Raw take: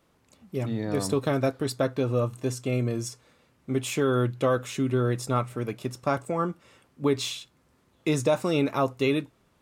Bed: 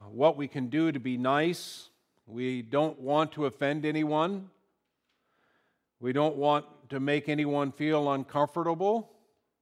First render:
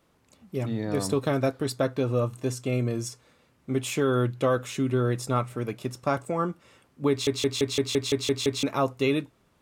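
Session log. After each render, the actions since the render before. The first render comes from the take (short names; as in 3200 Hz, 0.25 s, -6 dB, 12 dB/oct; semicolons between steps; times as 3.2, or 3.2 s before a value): 7.1 stutter in place 0.17 s, 9 plays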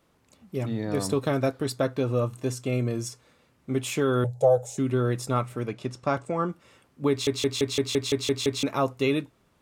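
4.24–4.78 EQ curve 140 Hz 0 dB, 290 Hz -29 dB, 440 Hz +3 dB, 800 Hz +11 dB, 1100 Hz -18 dB, 2700 Hz -21 dB, 7300 Hz +4 dB, 14000 Hz -5 dB; 5.66–6.49 LPF 7000 Hz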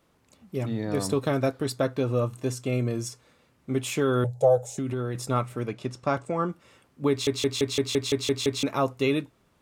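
4.6–5.15 compressor, threshold -25 dBFS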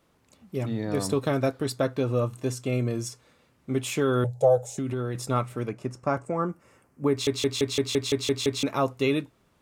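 5.69–7.18 bell 3600 Hz -14.5 dB 0.75 oct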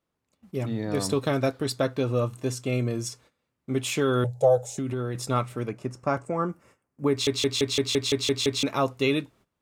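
gate -54 dBFS, range -16 dB; dynamic EQ 3900 Hz, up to +4 dB, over -42 dBFS, Q 0.72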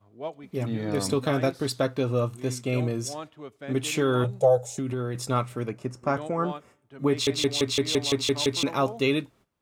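add bed -11.5 dB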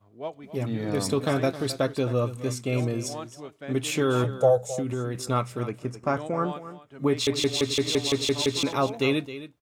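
echo 0.265 s -14 dB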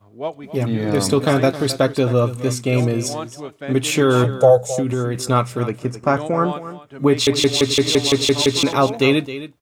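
gain +8.5 dB; limiter -2 dBFS, peak gain reduction 1.5 dB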